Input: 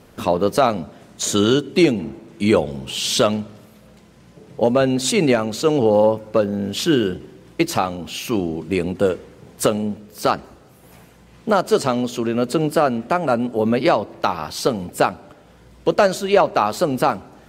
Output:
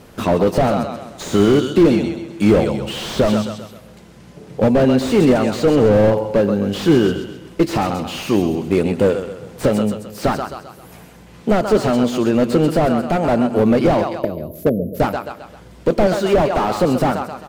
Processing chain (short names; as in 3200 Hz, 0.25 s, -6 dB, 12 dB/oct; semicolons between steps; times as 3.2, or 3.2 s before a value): 14.19–15 brick-wall FIR band-stop 680–11000 Hz; on a send: feedback echo 0.131 s, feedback 43%, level -12 dB; on the sum: slew limiter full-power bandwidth 83 Hz; gain +5 dB